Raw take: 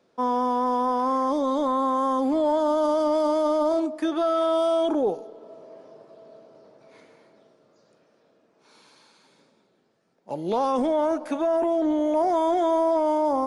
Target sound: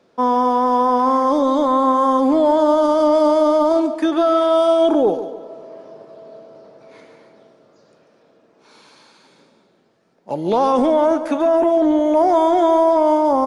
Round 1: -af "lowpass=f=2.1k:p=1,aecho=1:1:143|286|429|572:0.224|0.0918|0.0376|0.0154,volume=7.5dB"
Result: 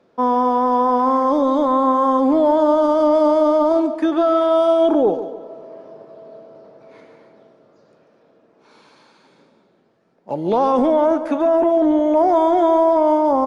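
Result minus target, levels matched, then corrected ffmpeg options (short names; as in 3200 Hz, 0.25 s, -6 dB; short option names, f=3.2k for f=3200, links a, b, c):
8000 Hz band -7.5 dB
-af "lowpass=f=7.2k:p=1,aecho=1:1:143|286|429|572:0.224|0.0918|0.0376|0.0154,volume=7.5dB"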